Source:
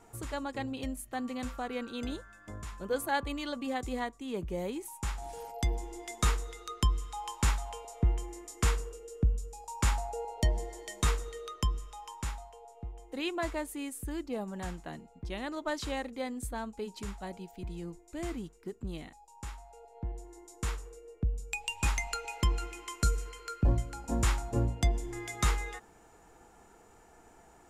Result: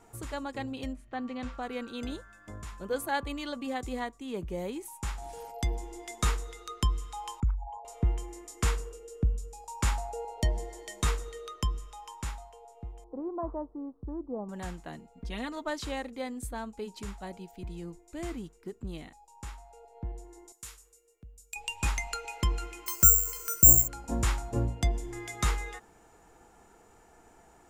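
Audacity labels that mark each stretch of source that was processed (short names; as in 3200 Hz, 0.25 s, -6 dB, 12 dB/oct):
0.920000	1.610000	LPF 2800 Hz -> 5000 Hz
7.400000	7.850000	formant sharpening exponent 3
13.040000	14.490000	elliptic low-pass 1100 Hz, stop band 60 dB
15.170000	15.630000	comb 4.3 ms
20.520000	21.560000	pre-emphasis coefficient 0.9
22.860000	23.880000	careless resampling rate divided by 6×, down filtered, up zero stuff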